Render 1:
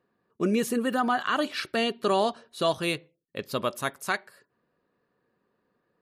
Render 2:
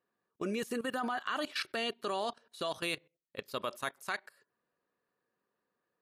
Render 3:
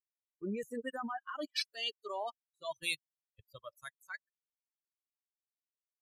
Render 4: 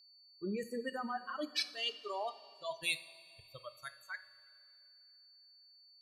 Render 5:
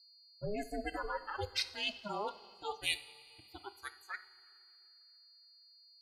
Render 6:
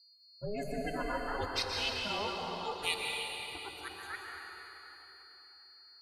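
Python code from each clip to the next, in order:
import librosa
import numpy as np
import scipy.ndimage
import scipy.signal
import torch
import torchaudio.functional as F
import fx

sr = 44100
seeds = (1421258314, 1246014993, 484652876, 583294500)

y1 = fx.low_shelf(x, sr, hz=380.0, db=-9.5)
y1 = fx.level_steps(y1, sr, step_db=17)
y2 = fx.bin_expand(y1, sr, power=3.0)
y2 = fx.band_widen(y2, sr, depth_pct=100)
y3 = fx.rev_double_slope(y2, sr, seeds[0], early_s=0.47, late_s=2.8, knee_db=-14, drr_db=10.5)
y3 = y3 + 10.0 ** (-60.0 / 20.0) * np.sin(2.0 * np.pi * 4500.0 * np.arange(len(y3)) / sr)
y4 = y3 * np.sin(2.0 * np.pi * 210.0 * np.arange(len(y3)) / sr)
y4 = y4 * 10.0 ** (3.5 / 20.0)
y5 = fx.rev_plate(y4, sr, seeds[1], rt60_s=3.9, hf_ratio=0.8, predelay_ms=110, drr_db=-1.5)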